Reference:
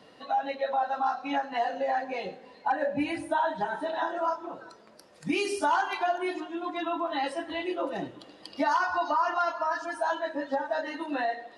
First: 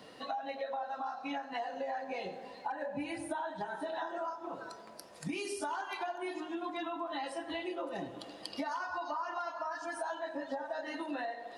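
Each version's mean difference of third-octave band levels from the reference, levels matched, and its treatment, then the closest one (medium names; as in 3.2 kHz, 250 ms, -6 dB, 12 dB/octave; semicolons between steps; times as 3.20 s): 4.0 dB: treble shelf 8.8 kHz +9 dB; compression 6:1, threshold -37 dBFS, peak gain reduction 14.5 dB; band-passed feedback delay 90 ms, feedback 82%, band-pass 760 Hz, level -14 dB; trim +1 dB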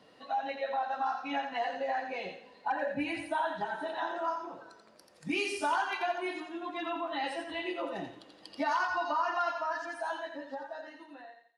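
2.5 dB: fade out at the end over 2.00 s; dynamic bell 2.5 kHz, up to +4 dB, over -43 dBFS, Q 1.3; on a send: thinning echo 86 ms, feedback 36%, high-pass 890 Hz, level -5 dB; on the sum: trim -5.5 dB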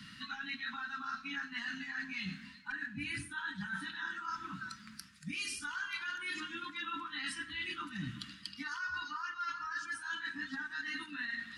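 12.0 dB: Chebyshev band-stop 220–1400 Hz, order 3; bass shelf 150 Hz +4 dB; reverse; compression 10:1, threshold -45 dBFS, peak gain reduction 18 dB; reverse; trim +8 dB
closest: second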